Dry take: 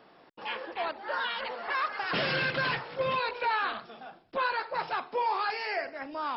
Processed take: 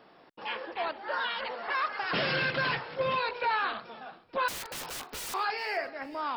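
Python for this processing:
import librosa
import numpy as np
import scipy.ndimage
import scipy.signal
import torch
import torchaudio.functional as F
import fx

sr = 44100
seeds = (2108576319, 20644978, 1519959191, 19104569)

p1 = fx.overflow_wrap(x, sr, gain_db=33.5, at=(4.48, 5.34))
y = p1 + fx.echo_feedback(p1, sr, ms=436, feedback_pct=30, wet_db=-23.0, dry=0)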